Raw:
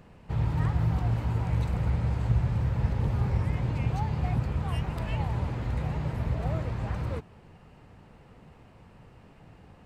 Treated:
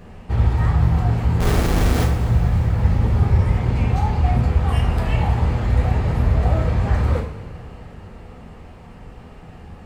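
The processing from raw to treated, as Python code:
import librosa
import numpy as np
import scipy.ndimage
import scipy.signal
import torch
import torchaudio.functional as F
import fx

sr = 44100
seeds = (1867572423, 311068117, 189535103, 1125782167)

p1 = fx.low_shelf(x, sr, hz=200.0, db=3.0)
p2 = fx.rider(p1, sr, range_db=10, speed_s=0.5)
p3 = p1 + (p2 * 10.0 ** (1.0 / 20.0))
p4 = fx.schmitt(p3, sr, flips_db=-26.0, at=(1.4, 2.04))
p5 = fx.rev_double_slope(p4, sr, seeds[0], early_s=0.48, late_s=3.8, knee_db=-18, drr_db=-2.0)
y = p5 * 10.0 ** (-1.5 / 20.0)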